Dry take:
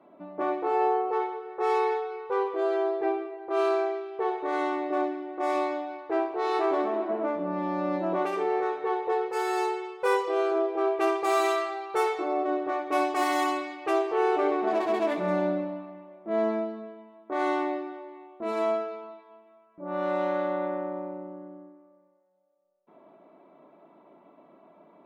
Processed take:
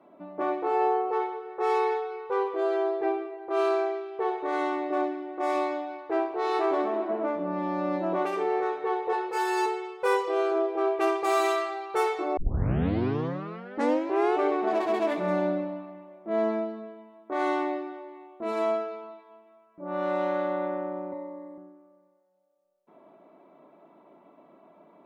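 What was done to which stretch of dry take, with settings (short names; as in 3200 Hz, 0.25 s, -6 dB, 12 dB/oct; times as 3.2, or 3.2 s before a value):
9.11–9.66 doubler 17 ms -3 dB
12.37 tape start 2.00 s
21.12–21.58 ripple EQ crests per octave 1, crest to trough 17 dB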